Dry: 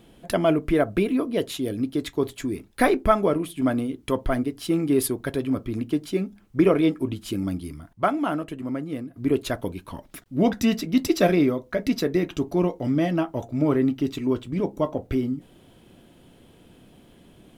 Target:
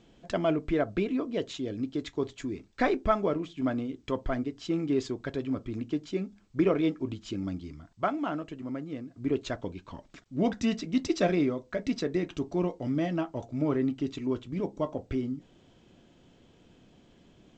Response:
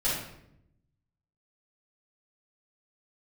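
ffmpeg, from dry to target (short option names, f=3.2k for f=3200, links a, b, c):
-af "volume=-6.5dB" -ar 16000 -c:a g722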